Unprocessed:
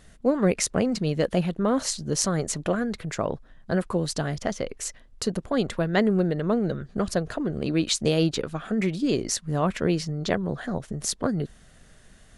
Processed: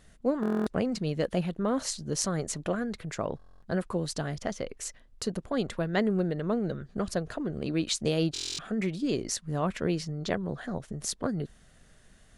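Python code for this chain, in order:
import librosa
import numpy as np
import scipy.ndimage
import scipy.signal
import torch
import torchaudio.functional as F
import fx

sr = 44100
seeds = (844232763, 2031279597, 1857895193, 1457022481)

y = fx.buffer_glitch(x, sr, at_s=(0.41, 3.37, 8.33), block=1024, repeats=10)
y = y * 10.0 ** (-5.0 / 20.0)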